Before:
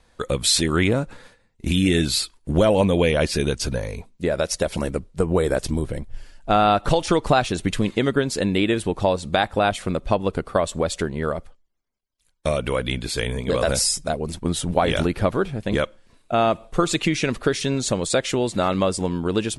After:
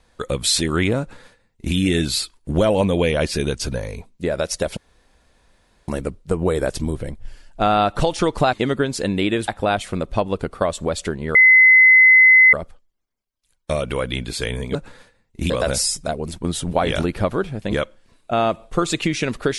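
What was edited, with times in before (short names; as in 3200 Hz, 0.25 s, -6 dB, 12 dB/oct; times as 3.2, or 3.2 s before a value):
1–1.75 copy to 13.51
4.77 insert room tone 1.11 s
7.42–7.9 cut
8.85–9.42 cut
11.29 add tone 2040 Hz -7 dBFS 1.18 s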